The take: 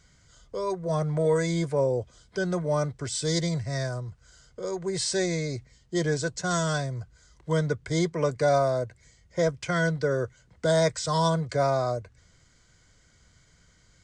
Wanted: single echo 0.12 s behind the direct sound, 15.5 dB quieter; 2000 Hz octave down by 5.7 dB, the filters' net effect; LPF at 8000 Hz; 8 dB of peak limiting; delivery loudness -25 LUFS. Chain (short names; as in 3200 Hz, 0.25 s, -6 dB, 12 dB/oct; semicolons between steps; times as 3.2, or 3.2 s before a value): LPF 8000 Hz; bell 2000 Hz -8.5 dB; limiter -21 dBFS; echo 0.12 s -15.5 dB; gain +6 dB